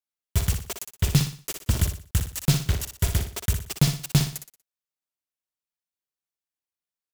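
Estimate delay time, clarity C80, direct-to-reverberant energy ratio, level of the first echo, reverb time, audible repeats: 60 ms, no reverb audible, no reverb audible, −7.5 dB, no reverb audible, 4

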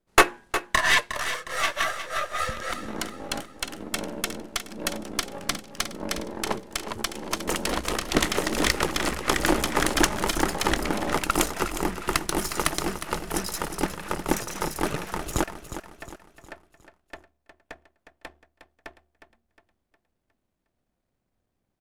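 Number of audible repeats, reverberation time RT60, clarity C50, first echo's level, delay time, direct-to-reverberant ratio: 4, no reverb audible, no reverb audible, −11.0 dB, 360 ms, no reverb audible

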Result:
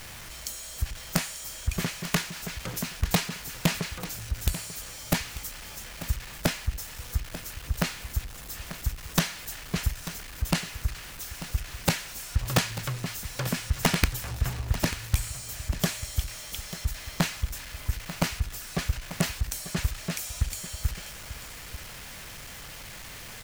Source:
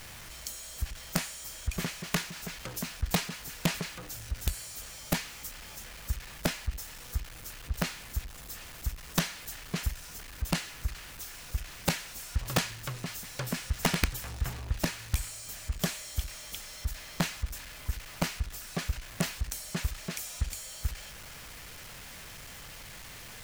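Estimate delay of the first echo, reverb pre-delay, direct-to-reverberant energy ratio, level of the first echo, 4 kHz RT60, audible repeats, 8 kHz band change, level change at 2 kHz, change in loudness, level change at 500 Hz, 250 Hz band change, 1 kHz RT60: 891 ms, no reverb audible, no reverb audible, −13.5 dB, no reverb audible, 1, +3.5 dB, +3.5 dB, +4.0 dB, +3.5 dB, +4.0 dB, no reverb audible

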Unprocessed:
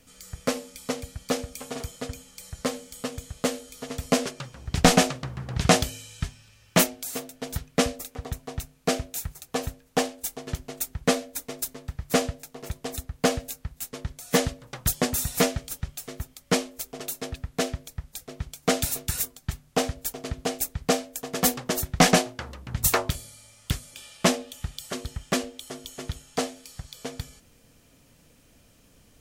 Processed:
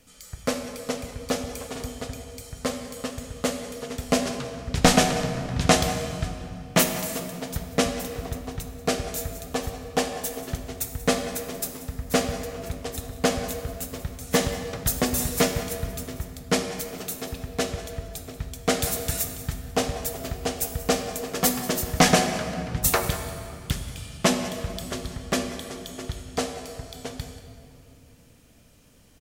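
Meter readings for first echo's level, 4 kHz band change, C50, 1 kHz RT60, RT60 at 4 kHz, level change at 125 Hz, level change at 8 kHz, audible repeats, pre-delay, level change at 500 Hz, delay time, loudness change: −17.5 dB, +1.0 dB, 7.0 dB, 2.4 s, 1.7 s, +1.5 dB, +0.5 dB, 1, 11 ms, +1.5 dB, 186 ms, +0.5 dB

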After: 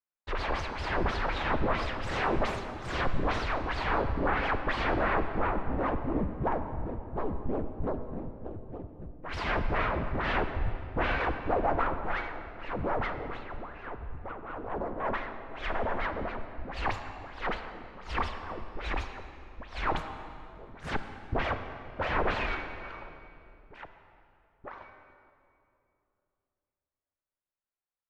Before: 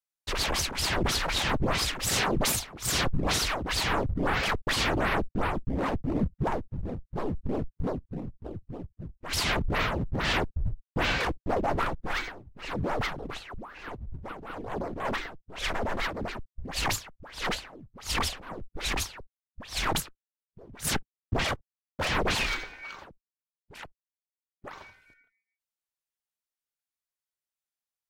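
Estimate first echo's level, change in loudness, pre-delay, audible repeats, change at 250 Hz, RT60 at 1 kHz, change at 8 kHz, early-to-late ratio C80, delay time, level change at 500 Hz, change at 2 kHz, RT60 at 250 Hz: no echo audible, −3.0 dB, 24 ms, no echo audible, −2.5 dB, 2.5 s, below −20 dB, 9.0 dB, no echo audible, 0.0 dB, −2.5 dB, 3.3 s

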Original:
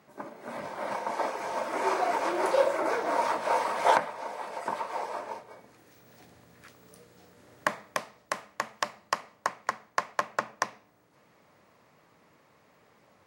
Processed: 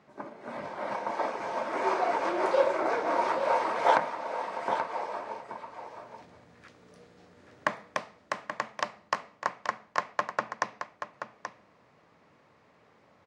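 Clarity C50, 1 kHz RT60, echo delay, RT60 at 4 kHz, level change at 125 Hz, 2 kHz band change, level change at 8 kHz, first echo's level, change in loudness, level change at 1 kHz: no reverb audible, no reverb audible, 830 ms, no reverb audible, +0.5 dB, −0.5 dB, −6.5 dB, −9.0 dB, −0.5 dB, 0.0 dB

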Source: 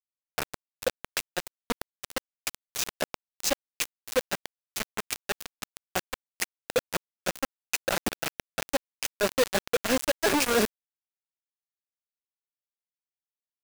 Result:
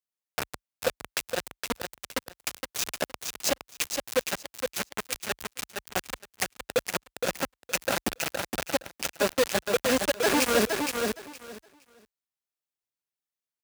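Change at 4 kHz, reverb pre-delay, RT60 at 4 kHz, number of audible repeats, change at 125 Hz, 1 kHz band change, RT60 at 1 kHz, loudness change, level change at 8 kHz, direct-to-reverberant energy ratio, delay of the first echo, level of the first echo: +1.0 dB, no reverb audible, no reverb audible, 3, +1.0 dB, +1.5 dB, no reverb audible, +1.0 dB, +1.0 dB, no reverb audible, 466 ms, −5.0 dB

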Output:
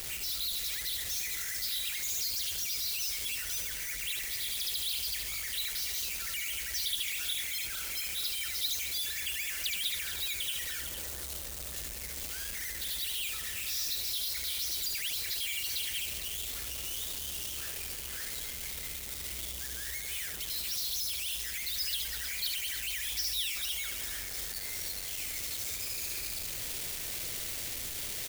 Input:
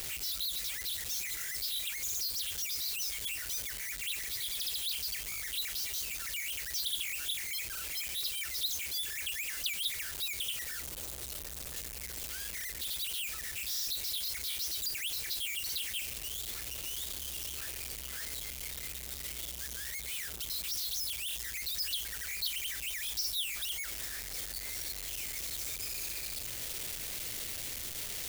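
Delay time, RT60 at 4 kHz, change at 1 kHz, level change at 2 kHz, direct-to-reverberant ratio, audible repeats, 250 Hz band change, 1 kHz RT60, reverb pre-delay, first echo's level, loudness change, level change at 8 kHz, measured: 73 ms, no reverb audible, +2.0 dB, +1.5 dB, no reverb audible, 4, +2.0 dB, no reverb audible, no reverb audible, −5.0 dB, +2.0 dB, +2.0 dB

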